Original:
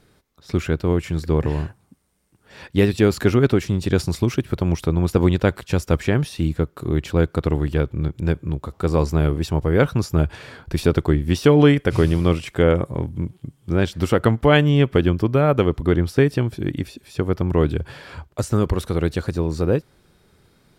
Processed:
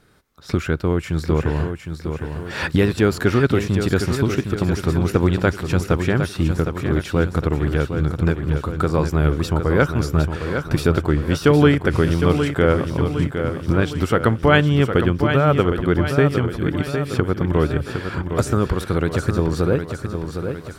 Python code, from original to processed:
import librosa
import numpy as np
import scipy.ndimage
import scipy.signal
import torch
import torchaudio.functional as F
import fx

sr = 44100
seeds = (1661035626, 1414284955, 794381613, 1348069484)

y = fx.recorder_agc(x, sr, target_db=-9.0, rise_db_per_s=12.0, max_gain_db=30)
y = fx.peak_eq(y, sr, hz=1400.0, db=6.0, octaves=0.61)
y = fx.echo_feedback(y, sr, ms=760, feedback_pct=53, wet_db=-7.5)
y = y * librosa.db_to_amplitude(-1.0)